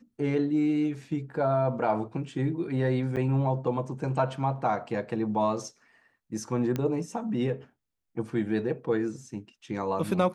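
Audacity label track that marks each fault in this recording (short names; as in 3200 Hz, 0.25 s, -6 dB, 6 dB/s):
3.160000	3.170000	gap 8 ms
6.760000	6.760000	pop -17 dBFS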